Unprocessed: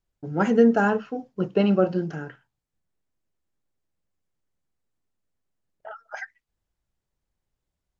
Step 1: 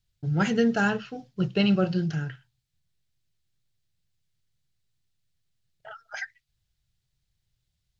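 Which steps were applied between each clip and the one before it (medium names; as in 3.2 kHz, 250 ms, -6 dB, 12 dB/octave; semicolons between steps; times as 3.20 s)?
graphic EQ 125/250/500/1000/4000 Hz +10/-10/-8/-9/+8 dB; trim +3.5 dB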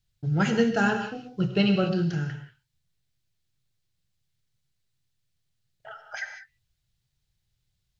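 gated-style reverb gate 220 ms flat, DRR 6 dB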